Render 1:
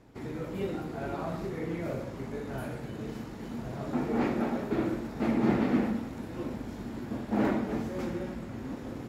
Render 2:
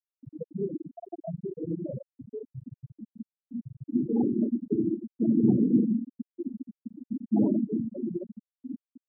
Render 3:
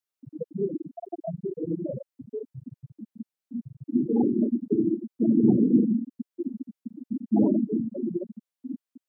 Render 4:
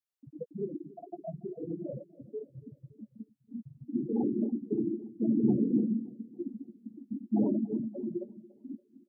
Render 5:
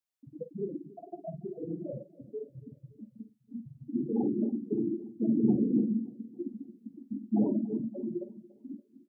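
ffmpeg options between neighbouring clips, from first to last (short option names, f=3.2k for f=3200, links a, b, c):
-filter_complex "[0:a]afftfilt=real='re*gte(hypot(re,im),0.141)':imag='im*gte(hypot(re,im),0.141)':win_size=1024:overlap=0.75,acrossover=split=350|1300|4700[a][b][c][d];[b]alimiter=level_in=12dB:limit=-24dB:level=0:latency=1:release=284,volume=-12dB[e];[a][e][c][d]amix=inputs=4:normalize=0,volume=6dB"
-af "lowshelf=f=140:g=-10,volume=5dB"
-filter_complex "[0:a]asplit=2[a][b];[b]adelay=14,volume=-10dB[c];[a][c]amix=inputs=2:normalize=0,aecho=1:1:285|570|855|1140:0.1|0.049|0.024|0.0118,volume=-7dB"
-filter_complex "[0:a]asplit=2[a][b];[b]adelay=48,volume=-11.5dB[c];[a][c]amix=inputs=2:normalize=0"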